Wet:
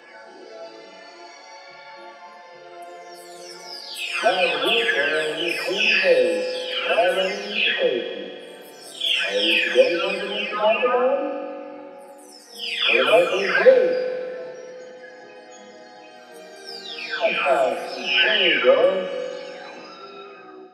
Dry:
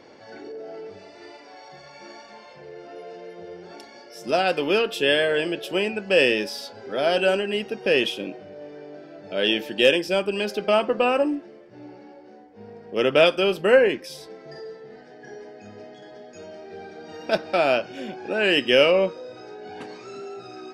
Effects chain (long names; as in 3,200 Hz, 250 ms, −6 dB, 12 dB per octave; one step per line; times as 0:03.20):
every frequency bin delayed by itself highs early, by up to 977 ms
meter weighting curve A
on a send: convolution reverb RT60 2.4 s, pre-delay 3 ms, DRR 7 dB
on the sum: level +5.5 dB